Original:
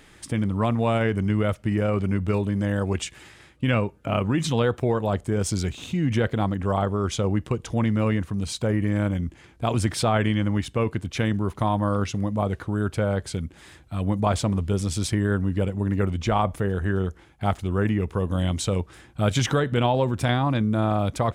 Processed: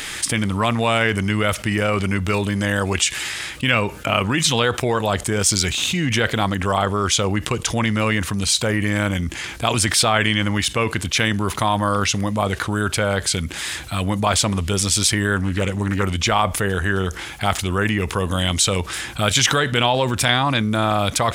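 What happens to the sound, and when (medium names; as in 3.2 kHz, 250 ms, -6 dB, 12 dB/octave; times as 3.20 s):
15.36–16.04 s: loudspeaker Doppler distortion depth 0.21 ms
whole clip: tilt shelf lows -8.5 dB, about 1.1 kHz; level flattener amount 50%; trim +4 dB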